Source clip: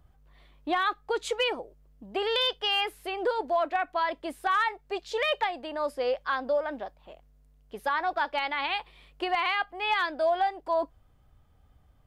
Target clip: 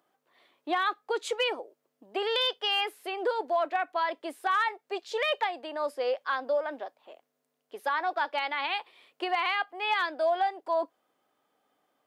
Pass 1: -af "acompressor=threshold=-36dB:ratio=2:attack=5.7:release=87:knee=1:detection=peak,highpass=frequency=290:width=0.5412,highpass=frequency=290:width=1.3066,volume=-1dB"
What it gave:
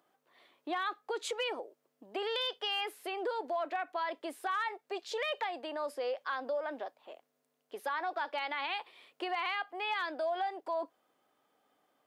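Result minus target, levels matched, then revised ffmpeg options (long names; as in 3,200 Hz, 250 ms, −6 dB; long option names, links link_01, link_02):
downward compressor: peak gain reduction +8 dB
-af "highpass=frequency=290:width=0.5412,highpass=frequency=290:width=1.3066,volume=-1dB"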